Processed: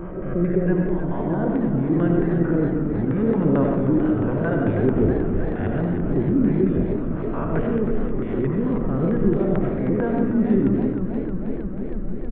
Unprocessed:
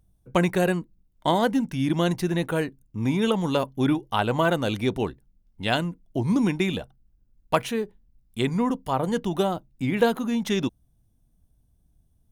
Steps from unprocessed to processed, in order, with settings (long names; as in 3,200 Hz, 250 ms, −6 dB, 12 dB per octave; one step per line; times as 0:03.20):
peak hold with a rise ahead of every peak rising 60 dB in 0.70 s
spectral tilt −4.5 dB per octave
mains-hum notches 60/120/180/240/300/360 Hz
reversed playback
downward compressor 6 to 1, threshold −26 dBFS, peak gain reduction 17.5 dB
reversed playback
auto-filter low-pass square 4.5 Hz 390–1,700 Hz
rotating-speaker cabinet horn 0.8 Hz
backwards echo 388 ms −15 dB
on a send at −2 dB: convolution reverb RT60 0.70 s, pre-delay 50 ms
on the sum: downsampling to 8,000 Hz
feedback echo with a swinging delay time 316 ms, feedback 80%, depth 145 cents, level −9 dB
level +4.5 dB